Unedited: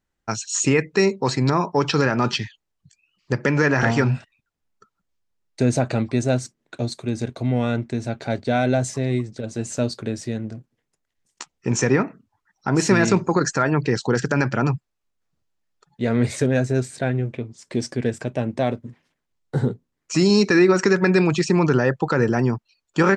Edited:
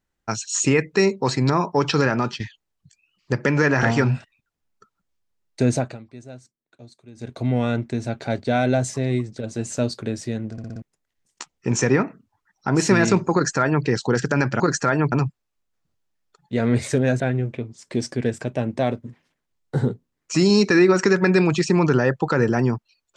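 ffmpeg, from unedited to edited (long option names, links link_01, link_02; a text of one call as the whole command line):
ffmpeg -i in.wav -filter_complex "[0:a]asplit=12[link_01][link_02][link_03][link_04][link_05][link_06][link_07][link_08][link_09][link_10][link_11][link_12];[link_01]atrim=end=2.4,asetpts=PTS-STARTPTS,afade=type=out:start_time=2.15:duration=0.25:silence=0.199526[link_13];[link_02]atrim=start=2.4:end=5.98,asetpts=PTS-STARTPTS,afade=type=in:duration=0.004:curve=hsin:silence=0.199526,afade=type=out:start_time=3.33:duration=0.25:silence=0.105925[link_14];[link_03]atrim=start=5.98:end=7.15,asetpts=PTS-STARTPTS,volume=-19.5dB[link_15];[link_04]atrim=start=7.15:end=10.582,asetpts=PTS-STARTPTS,afade=type=in:duration=0.25:silence=0.105925[link_16];[link_05]atrim=start=10.518:end=10.582[link_17];[link_06]atrim=start=10.518:end=10.582[link_18];[link_07]atrim=start=10.518:end=10.582[link_19];[link_08]atrim=start=10.518:end=10.582[link_20];[link_09]atrim=start=10.818:end=14.602[link_21];[link_10]atrim=start=13.328:end=13.852[link_22];[link_11]atrim=start=14.598:end=16.682[link_23];[link_12]atrim=start=16.998[link_24];[link_13][link_14][link_15][link_16]concat=n=4:v=0:a=1[link_25];[link_25][link_17]acrossfade=duration=0.004:curve1=hsin:curve2=hsin[link_26];[link_26][link_18]acrossfade=duration=0.004:curve1=hsin:curve2=hsin[link_27];[link_27][link_19]acrossfade=duration=0.004:curve1=hsin:curve2=hsin[link_28];[link_28][link_20]acrossfade=duration=0.004:curve1=hsin:curve2=hsin[link_29];[link_29][link_21]acrossfade=duration=0.004:curve1=hsin:curve2=hsin[link_30];[link_30][link_22]acrossfade=duration=0.004:curve1=hsin:curve2=hsin[link_31];[link_31][link_23]acrossfade=duration=0.004:curve1=hsin:curve2=hsin[link_32];[link_32][link_24]acrossfade=duration=0.004:curve1=hsin:curve2=hsin" out.wav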